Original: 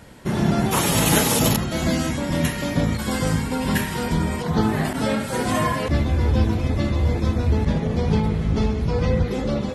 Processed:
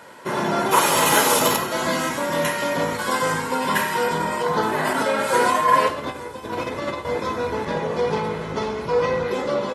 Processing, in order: soft clip -9.5 dBFS, distortion -23 dB; 4.87–7.05 negative-ratio compressor -23 dBFS, ratio -0.5; HPF 270 Hz 12 dB/oct; bell 1100 Hz +8 dB 1.4 oct; comb 2 ms, depth 33%; thin delay 0.874 s, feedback 56%, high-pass 5000 Hz, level -19 dB; reverb, pre-delay 3 ms, DRR 6.5 dB

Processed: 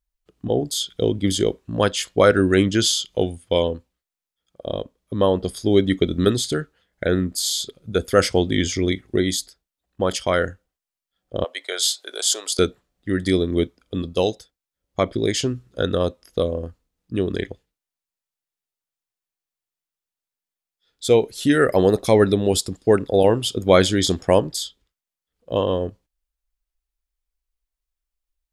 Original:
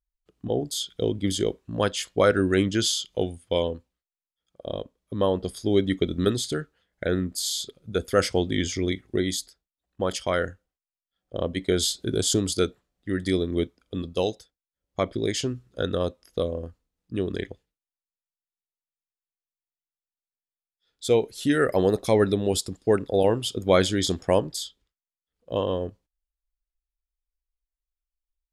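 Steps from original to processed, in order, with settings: 11.44–12.59 HPF 620 Hz 24 dB/oct; gain +5 dB

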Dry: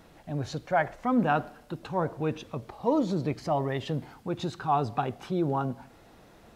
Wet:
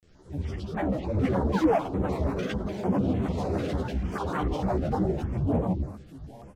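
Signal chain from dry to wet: pitch shift by moving bins -10.5 st; high shelf 5500 Hz +7 dB; on a send: echo 89 ms -6.5 dB; on the sum: echoes that change speed 0.616 s, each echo +4 st, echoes 3; tapped delay 0.109/0.124/0.244/0.787 s -4.5/-7/-11.5/-14 dB; painted sound fall, 1.51–1.77, 340–990 Hz -18 dBFS; grains, spray 29 ms, pitch spread up and down by 12 st; in parallel at -10 dB: wavefolder -24 dBFS; on the sum: chorus voices 6, 1.5 Hz, delay 13 ms, depth 3 ms; stepped notch 6.7 Hz 940–5000 Hz

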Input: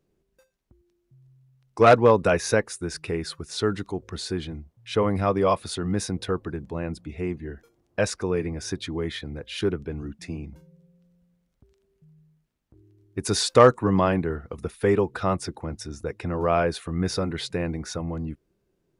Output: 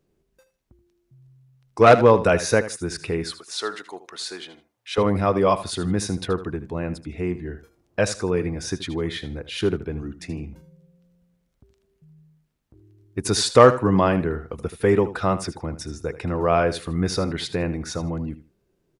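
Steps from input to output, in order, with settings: 3.3–4.98 HPF 640 Hz 12 dB/oct; feedback echo 78 ms, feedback 21%, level -14 dB; gain +2.5 dB

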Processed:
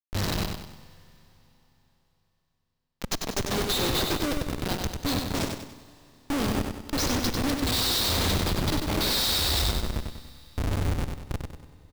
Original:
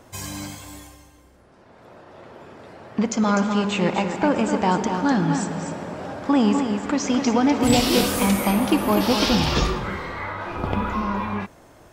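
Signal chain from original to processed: spectral gain 3.19–3.71, 1700–5100 Hz -6 dB; de-hum 187.5 Hz, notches 8; spectral gain 3.36–4.33, 240–11000 Hz +7 dB; EQ curve 100 Hz 0 dB, 160 Hz -28 dB, 300 Hz -12 dB, 1300 Hz -25 dB, 2400 Hz -29 dB, 3800 Hz +13 dB, 11000 Hz -14 dB; in parallel at +3 dB: compressor 6:1, threshold -30 dBFS, peak gain reduction 14 dB; on the sum: added harmonics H 2 -34 dB, 7 -27 dB, 8 -21 dB, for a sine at -3 dBFS; Schmitt trigger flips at -27 dBFS; on a send: feedback echo 96 ms, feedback 42%, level -5 dB; on the sum: Schroeder reverb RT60 3.8 s, combs from 28 ms, DRR 17.5 dB

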